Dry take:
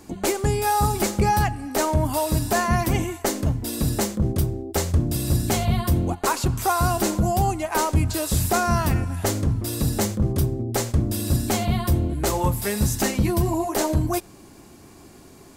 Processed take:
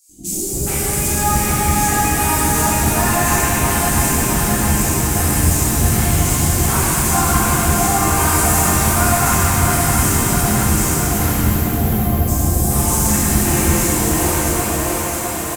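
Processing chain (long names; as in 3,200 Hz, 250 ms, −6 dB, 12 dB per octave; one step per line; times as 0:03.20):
graphic EQ with 10 bands 125 Hz −6 dB, 500 Hz −10 dB, 1,000 Hz −3 dB, 4,000 Hz −5 dB, 8,000 Hz +5 dB
on a send: feedback echo with a high-pass in the loop 663 ms, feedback 74%, high-pass 150 Hz, level −5 dB
on the sum: time-frequency box erased 0:10.99–0:12.28, 850–11,000 Hz
three-band delay without the direct sound highs, lows, mids 90/430 ms, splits 460/4,300 Hz
reverb with rising layers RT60 3.7 s, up +7 semitones, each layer −8 dB, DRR −12 dB
level −3 dB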